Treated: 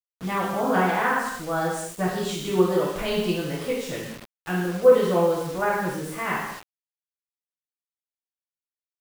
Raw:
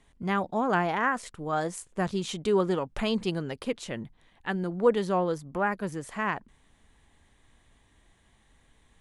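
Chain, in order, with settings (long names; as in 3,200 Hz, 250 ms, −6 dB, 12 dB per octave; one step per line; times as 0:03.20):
pitch vibrato 1.5 Hz 96 cents
reverb whose tail is shaped and stops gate 310 ms falling, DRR −7.5 dB
bit-depth reduction 6 bits, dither none
level −4 dB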